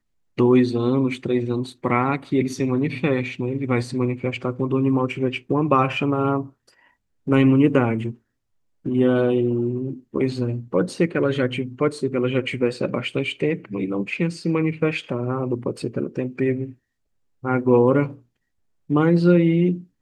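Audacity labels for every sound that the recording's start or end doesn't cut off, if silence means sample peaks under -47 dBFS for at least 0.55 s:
8.850000	16.740000	sound
17.430000	18.210000	sound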